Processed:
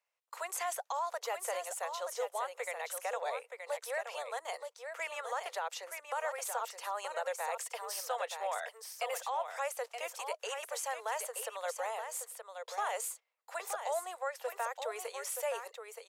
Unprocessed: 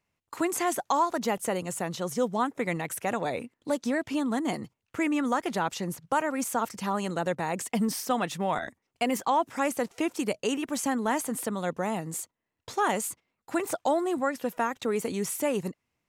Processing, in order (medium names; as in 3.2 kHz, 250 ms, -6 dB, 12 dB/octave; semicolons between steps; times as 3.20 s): steep high-pass 470 Hz 72 dB/octave; peak limiter -22 dBFS, peak gain reduction 7 dB; on a send: delay 924 ms -7 dB; on the sum: trim -5.5 dB